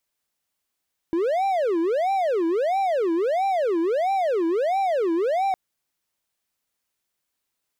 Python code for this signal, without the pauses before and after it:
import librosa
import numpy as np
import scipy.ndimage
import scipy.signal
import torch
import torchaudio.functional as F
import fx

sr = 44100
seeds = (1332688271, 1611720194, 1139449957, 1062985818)

y = fx.siren(sr, length_s=4.41, kind='wail', low_hz=327.0, high_hz=787.0, per_s=1.5, wave='triangle', level_db=-17.5)